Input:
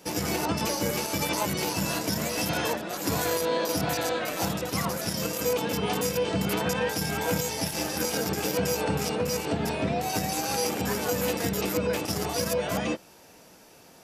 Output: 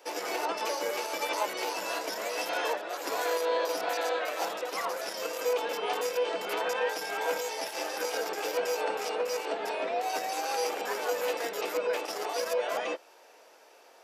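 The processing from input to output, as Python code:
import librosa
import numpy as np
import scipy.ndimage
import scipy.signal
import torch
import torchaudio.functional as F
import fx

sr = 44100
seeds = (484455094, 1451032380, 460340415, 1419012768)

y = scipy.signal.sosfilt(scipy.signal.butter(4, 430.0, 'highpass', fs=sr, output='sos'), x)
y = fx.peak_eq(y, sr, hz=12000.0, db=-11.0, octaves=2.0)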